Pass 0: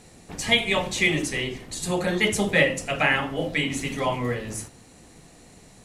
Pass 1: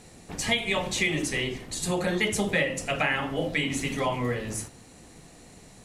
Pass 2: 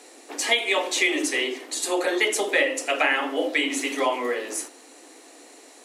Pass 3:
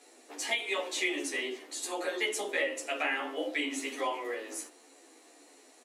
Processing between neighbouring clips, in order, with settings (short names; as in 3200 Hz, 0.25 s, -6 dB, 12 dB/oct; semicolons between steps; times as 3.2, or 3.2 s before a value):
compressor 3:1, threshold -23 dBFS, peak gain reduction 7.5 dB
steep high-pass 270 Hz 72 dB/oct; gain +4.5 dB
endless flanger 11.9 ms -1.6 Hz; gain -6.5 dB